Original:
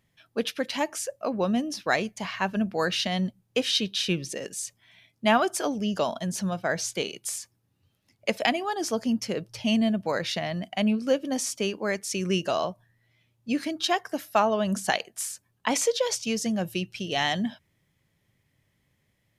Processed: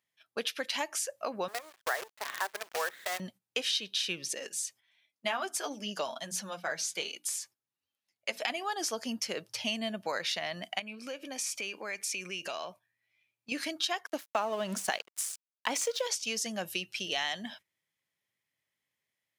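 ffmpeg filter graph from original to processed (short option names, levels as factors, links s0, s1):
-filter_complex "[0:a]asettb=1/sr,asplit=3[s0][s1][s2];[s0]atrim=end=1.484[s3];[s1]atrim=start=1.48:end=3.2,asetpts=PTS-STARTPTS,afade=t=in:d=0.004:c=qsin,afade=t=out:st=1.716:d=0.004:c=qsin,asuperpass=centerf=860:order=20:qfactor=0.52,acrusher=bits=6:dc=4:mix=0:aa=0.000001[s4];[s2]atrim=start=3.196[s5];[s3][s4]acrossfade=d=0.004:c1=hsin:c2=qsin[s6];[s6][s5]acrossfade=d=0.004:c1=qsin:c2=hsin,asettb=1/sr,asplit=3[s7][s8][s9];[s7]atrim=end=4.354[s10];[s8]atrim=start=4.35:end=8.5,asetpts=PTS-STARTPTS,afade=t=in:d=0.004:c=qsin,afade=t=out:st=4.146:d=0.004:c=qsin,bandreject=f=60:t=h:w=6,bandreject=f=120:t=h:w=6,bandreject=f=180:t=h:w=6,bandreject=f=240:t=h:w=6,bandreject=f=300:t=h:w=6,flanger=delay=3.4:depth=4.4:regen=-21:speed=1.4:shape=sinusoidal[s11];[s9]atrim=start=8.496[s12];[s10][s11]acrossfade=d=0.004:c1=hsin:c2=qsin[s13];[s13][s12]acrossfade=d=0.004:c1=qsin:c2=hsin,asettb=1/sr,asplit=3[s14][s15][s16];[s14]atrim=end=10.794[s17];[s15]atrim=start=10.79:end=13.52,asetpts=PTS-STARTPTS,afade=t=in:d=0.004:c=qsin,afade=t=out:st=2.726:d=0.004:c=qsin,equalizer=f=2400:w=7.8:g=13.5,acompressor=threshold=0.0224:ratio=5:attack=3.2:release=140:knee=1:detection=peak[s18];[s16]atrim=start=13.516[s19];[s17][s18]acrossfade=d=0.004:c1=hsin:c2=qsin[s20];[s20][s19]acrossfade=d=0.004:c1=qsin:c2=hsin,asettb=1/sr,asplit=3[s21][s22][s23];[s21]atrim=end=14.064[s24];[s22]atrim=start=14.06:end=16.07,asetpts=PTS-STARTPTS,afade=t=in:d=0.004:c=qsin,afade=t=out:st=2.006:d=0.004:c=qsin,equalizer=f=250:w=0.36:g=6.5,aeval=exprs='sgn(val(0))*max(abs(val(0))-0.00891,0)':c=same[s25];[s23]atrim=start=16.066[s26];[s24][s25]acrossfade=d=0.004:c1=hsin:c2=qsin[s27];[s27][s26]acrossfade=d=0.004:c1=qsin:c2=hsin,highpass=f=1200:p=1,agate=range=0.224:threshold=0.002:ratio=16:detection=peak,acompressor=threshold=0.0178:ratio=3,volume=1.58"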